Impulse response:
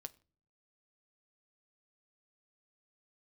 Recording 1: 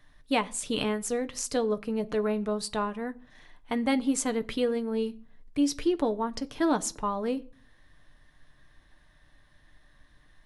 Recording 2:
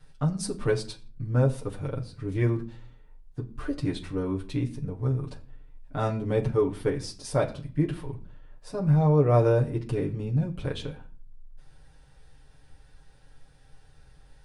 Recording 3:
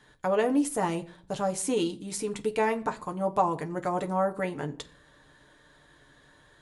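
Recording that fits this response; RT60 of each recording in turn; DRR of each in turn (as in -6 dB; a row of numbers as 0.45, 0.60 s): 1; not exponential, not exponential, not exponential; 9.0, -3.0, 4.0 dB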